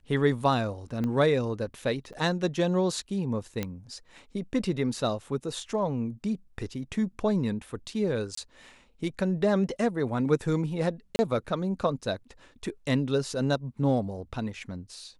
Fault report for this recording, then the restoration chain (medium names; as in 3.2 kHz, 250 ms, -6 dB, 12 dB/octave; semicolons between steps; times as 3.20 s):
1.04 s: pop -20 dBFS
2.13–2.14 s: dropout 7.3 ms
3.63 s: pop -16 dBFS
8.35–8.37 s: dropout 24 ms
11.16–11.19 s: dropout 30 ms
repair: de-click; interpolate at 2.13 s, 7.3 ms; interpolate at 8.35 s, 24 ms; interpolate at 11.16 s, 30 ms